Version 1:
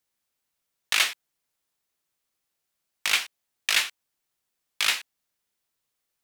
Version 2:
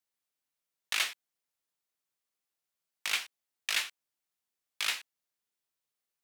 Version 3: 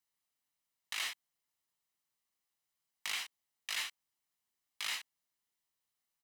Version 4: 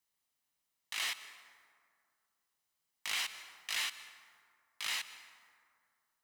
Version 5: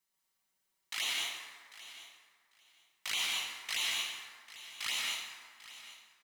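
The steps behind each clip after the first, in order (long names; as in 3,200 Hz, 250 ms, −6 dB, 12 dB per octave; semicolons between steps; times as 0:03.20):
low-shelf EQ 120 Hz −6.5 dB; level −8 dB
comb filter 1 ms, depth 33%; brickwall limiter −25.5 dBFS, peak gain reduction 10.5 dB
transient designer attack −4 dB, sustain +7 dB; dense smooth reverb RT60 2.2 s, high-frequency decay 0.45×, pre-delay 115 ms, DRR 12.5 dB; speech leveller within 3 dB 0.5 s; level +4 dB
flanger swept by the level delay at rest 5.3 ms, full sweep at −33 dBFS; repeating echo 795 ms, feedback 16%, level −16 dB; dense smooth reverb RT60 1 s, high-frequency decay 0.7×, pre-delay 110 ms, DRR −1 dB; level +3.5 dB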